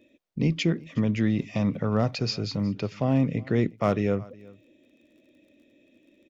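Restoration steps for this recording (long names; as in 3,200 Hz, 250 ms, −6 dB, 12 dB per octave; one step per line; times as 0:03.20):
clipped peaks rebuilt −13.5 dBFS
click removal
echo removal 366 ms −23 dB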